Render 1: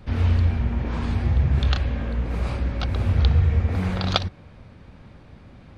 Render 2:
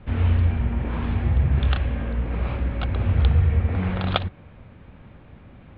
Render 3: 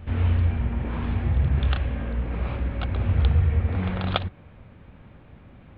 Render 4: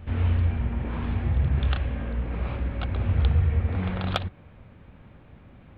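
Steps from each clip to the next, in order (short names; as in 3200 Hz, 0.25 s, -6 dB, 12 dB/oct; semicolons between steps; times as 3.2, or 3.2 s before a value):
steep low-pass 3400 Hz 36 dB/oct
pre-echo 0.285 s -20 dB; gain -2 dB
hard clip -9.5 dBFS, distortion -34 dB; gain -1.5 dB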